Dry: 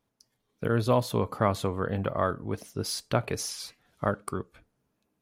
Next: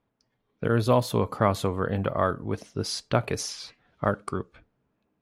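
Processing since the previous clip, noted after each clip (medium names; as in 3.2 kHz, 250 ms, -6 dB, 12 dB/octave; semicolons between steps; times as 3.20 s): level-controlled noise filter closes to 2.6 kHz, open at -24.5 dBFS; trim +2.5 dB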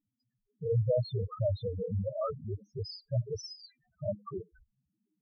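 loudest bins only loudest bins 2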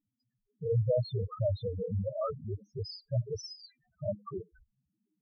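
no audible change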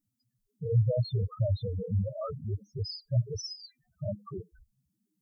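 tone controls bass +8 dB, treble +11 dB; trim -3 dB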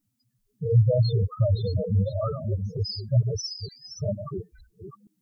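chunks repeated in reverse 461 ms, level -9 dB; trim +6 dB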